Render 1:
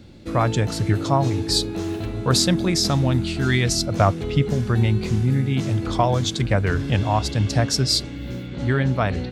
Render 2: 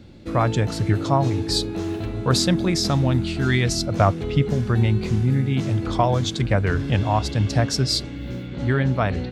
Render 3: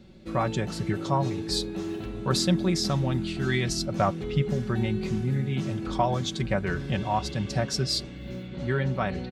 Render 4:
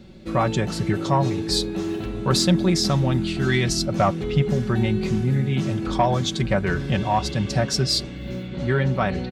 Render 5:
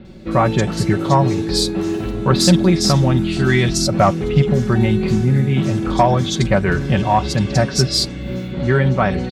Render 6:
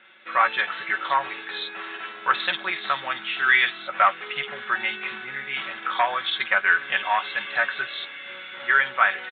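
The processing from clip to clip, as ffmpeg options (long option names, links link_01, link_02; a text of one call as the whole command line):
ffmpeg -i in.wav -af "highshelf=frequency=5200:gain=-5.5" out.wav
ffmpeg -i in.wav -af "aecho=1:1:5.3:0.58,volume=-6.5dB" out.wav
ffmpeg -i in.wav -af "asoftclip=type=tanh:threshold=-13.5dB,volume=6dB" out.wav
ffmpeg -i in.wav -filter_complex "[0:a]acrossover=split=3400[link_01][link_02];[link_02]adelay=50[link_03];[link_01][link_03]amix=inputs=2:normalize=0,volume=6dB" out.wav
ffmpeg -i in.wav -filter_complex "[0:a]highpass=frequency=1500:width_type=q:width=1.9,asplit=2[link_01][link_02];[link_02]adelay=14,volume=-11dB[link_03];[link_01][link_03]amix=inputs=2:normalize=0,aresample=8000,aresample=44100" out.wav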